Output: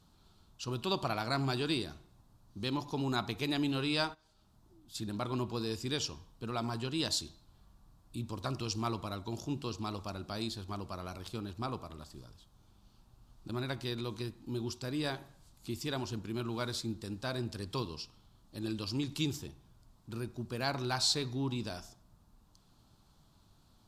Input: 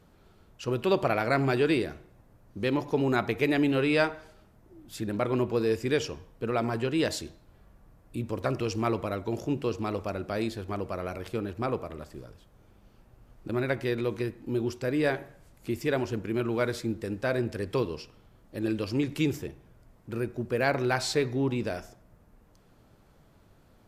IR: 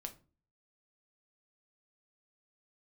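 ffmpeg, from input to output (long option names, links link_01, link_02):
-filter_complex "[0:a]equalizer=frequency=500:width_type=o:width=1:gain=-11,equalizer=frequency=1000:width_type=o:width=1:gain=5,equalizer=frequency=2000:width_type=o:width=1:gain=-11,equalizer=frequency=4000:width_type=o:width=1:gain=10,equalizer=frequency=8000:width_type=o:width=1:gain=4,asplit=3[link_01][link_02][link_03];[link_01]afade=type=out:start_time=4.13:duration=0.02[link_04];[link_02]acompressor=threshold=-54dB:ratio=2.5,afade=type=in:start_time=4.13:duration=0.02,afade=type=out:start_time=4.94:duration=0.02[link_05];[link_03]afade=type=in:start_time=4.94:duration=0.02[link_06];[link_04][link_05][link_06]amix=inputs=3:normalize=0,volume=-4.5dB"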